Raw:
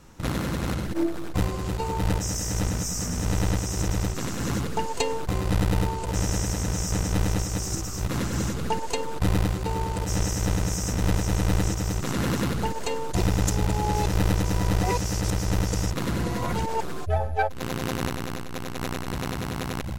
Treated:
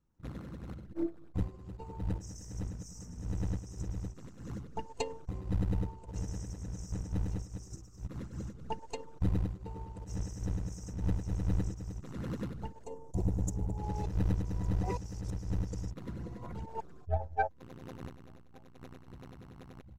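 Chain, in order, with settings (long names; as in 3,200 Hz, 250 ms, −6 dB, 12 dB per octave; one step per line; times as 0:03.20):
spectral envelope exaggerated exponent 1.5
0:12.84–0:13.78: flat-topped bell 2,500 Hz −13 dB 2.3 octaves
repeating echo 1,158 ms, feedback 43%, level −21 dB
expander for the loud parts 2.5 to 1, over −34 dBFS
level −4.5 dB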